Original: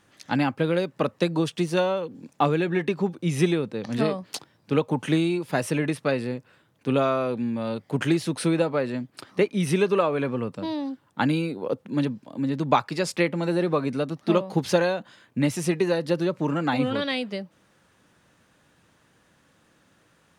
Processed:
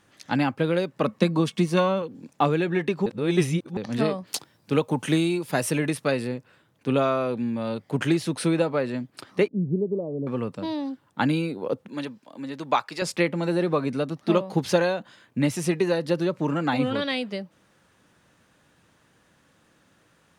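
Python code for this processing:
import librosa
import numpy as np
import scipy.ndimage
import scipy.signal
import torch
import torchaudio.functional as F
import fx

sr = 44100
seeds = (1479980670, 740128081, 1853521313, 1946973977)

y = fx.small_body(x, sr, hz=(210.0, 1100.0, 2200.0), ring_ms=90, db=13, at=(1.04, 2.02))
y = fx.high_shelf(y, sr, hz=6200.0, db=9.0, at=(4.27, 6.28))
y = fx.gaussian_blur(y, sr, sigma=18.0, at=(9.48, 10.27))
y = fx.highpass(y, sr, hz=660.0, slope=6, at=(11.88, 13.02))
y = fx.edit(y, sr, fx.reverse_span(start_s=3.06, length_s=0.71), tone=tone)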